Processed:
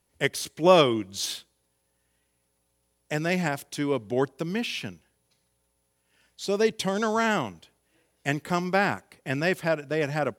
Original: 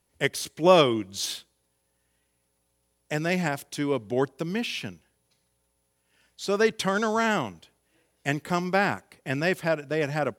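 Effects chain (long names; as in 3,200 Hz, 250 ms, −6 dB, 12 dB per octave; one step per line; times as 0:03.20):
0:06.46–0:07.01: parametric band 1,400 Hz −11.5 dB 0.66 octaves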